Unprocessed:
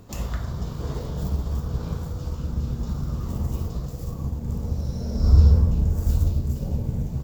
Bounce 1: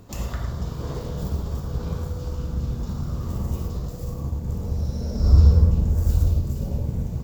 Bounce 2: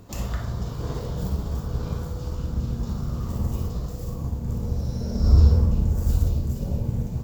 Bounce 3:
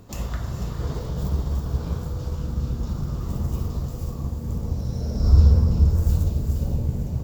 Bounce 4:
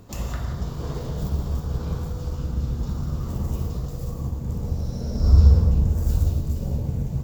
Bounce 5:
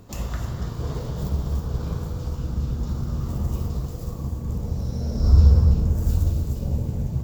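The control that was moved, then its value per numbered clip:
gated-style reverb, gate: 130 ms, 80 ms, 520 ms, 200 ms, 330 ms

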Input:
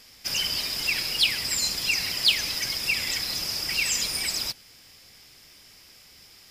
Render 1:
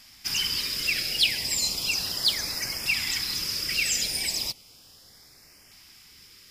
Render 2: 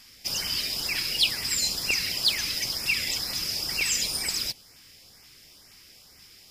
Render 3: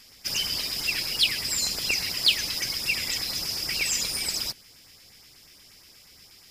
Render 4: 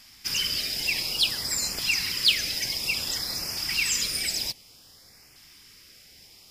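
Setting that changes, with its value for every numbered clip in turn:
LFO notch, rate: 0.35 Hz, 2.1 Hz, 8.4 Hz, 0.56 Hz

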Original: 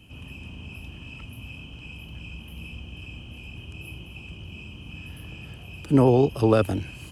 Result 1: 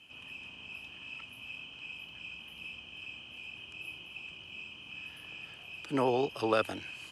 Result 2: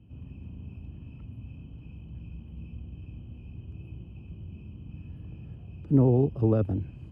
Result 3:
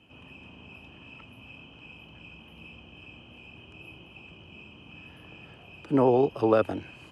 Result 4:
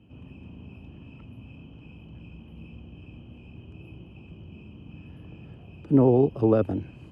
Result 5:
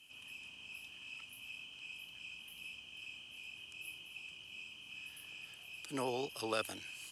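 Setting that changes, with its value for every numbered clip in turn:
band-pass filter, frequency: 2.5 kHz, 110 Hz, 850 Hz, 270 Hz, 7.1 kHz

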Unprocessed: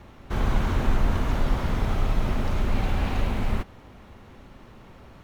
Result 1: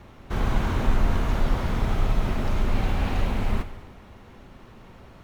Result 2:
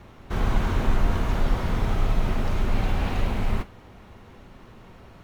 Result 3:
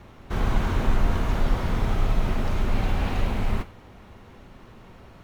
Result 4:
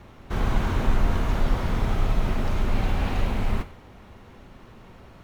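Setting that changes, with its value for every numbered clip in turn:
gated-style reverb, gate: 430 ms, 90 ms, 130 ms, 190 ms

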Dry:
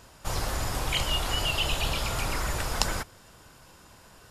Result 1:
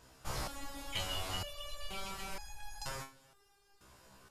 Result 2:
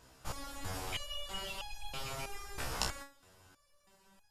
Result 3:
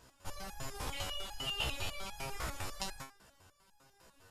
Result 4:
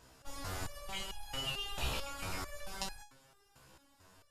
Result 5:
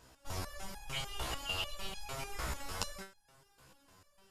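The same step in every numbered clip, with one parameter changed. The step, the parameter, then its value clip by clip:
resonator arpeggio, rate: 2.1 Hz, 3.1 Hz, 10 Hz, 4.5 Hz, 6.7 Hz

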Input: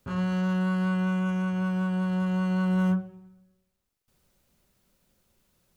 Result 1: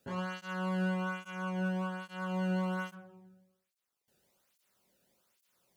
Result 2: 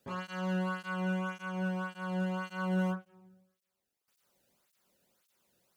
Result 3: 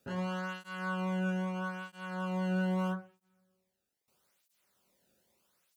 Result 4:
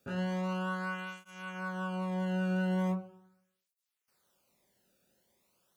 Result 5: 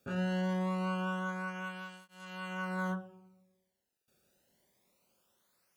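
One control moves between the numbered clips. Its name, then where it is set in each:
cancelling through-zero flanger, nulls at: 1.2 Hz, 1.8 Hz, 0.78 Hz, 0.4 Hz, 0.24 Hz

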